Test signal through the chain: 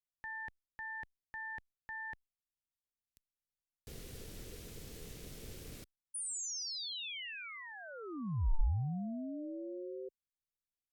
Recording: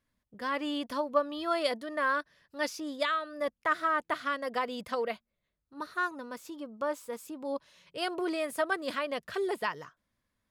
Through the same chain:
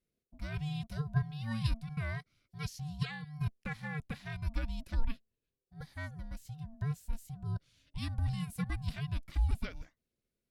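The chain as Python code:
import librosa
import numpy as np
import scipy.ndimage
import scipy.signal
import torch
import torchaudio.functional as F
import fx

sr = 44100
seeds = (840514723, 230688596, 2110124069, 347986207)

y = x * np.sin(2.0 * np.pi * 450.0 * np.arange(len(x)) / sr)
y = fx.tone_stack(y, sr, knobs='10-0-1')
y = y * librosa.db_to_amplitude(16.5)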